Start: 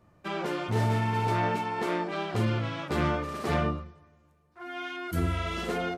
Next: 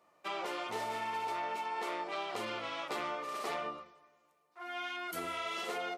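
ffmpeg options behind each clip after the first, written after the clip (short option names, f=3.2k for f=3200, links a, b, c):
-af "highpass=580,equalizer=f=1.6k:w=7.2:g=-9,acompressor=threshold=-34dB:ratio=6"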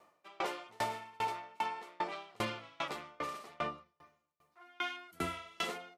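-af "asubboost=boost=4.5:cutoff=190,aeval=exprs='val(0)*pow(10,-32*if(lt(mod(2.5*n/s,1),2*abs(2.5)/1000),1-mod(2.5*n/s,1)/(2*abs(2.5)/1000),(mod(2.5*n/s,1)-2*abs(2.5)/1000)/(1-2*abs(2.5)/1000))/20)':c=same,volume=7.5dB"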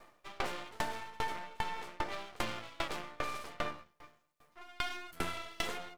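-af "aeval=exprs='max(val(0),0)':c=same,acompressor=threshold=-42dB:ratio=3,volume=9.5dB"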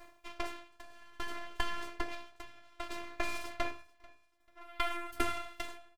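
-af "afftfilt=real='hypot(re,im)*cos(PI*b)':imag='0':win_size=512:overlap=0.75,tremolo=f=0.59:d=0.91,aecho=1:1:440|880:0.0631|0.0196,volume=7dB"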